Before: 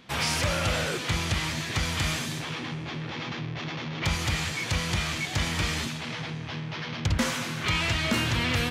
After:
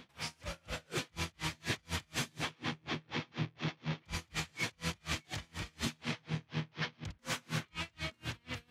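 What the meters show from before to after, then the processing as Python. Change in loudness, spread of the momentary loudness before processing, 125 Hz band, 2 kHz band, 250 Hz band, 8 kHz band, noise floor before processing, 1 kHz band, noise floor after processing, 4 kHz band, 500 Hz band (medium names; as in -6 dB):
-11.5 dB, 9 LU, -11.5 dB, -11.5 dB, -10.0 dB, -11.5 dB, -35 dBFS, -11.5 dB, -71 dBFS, -11.5 dB, -12.0 dB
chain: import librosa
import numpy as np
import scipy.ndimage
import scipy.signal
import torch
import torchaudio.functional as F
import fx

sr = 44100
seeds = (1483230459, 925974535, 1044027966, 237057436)

y = fx.over_compress(x, sr, threshold_db=-32.0, ratio=-1.0)
y = y * 10.0 ** (-36 * (0.5 - 0.5 * np.cos(2.0 * np.pi * 4.1 * np.arange(len(y)) / sr)) / 20.0)
y = y * 10.0 ** (-2.0 / 20.0)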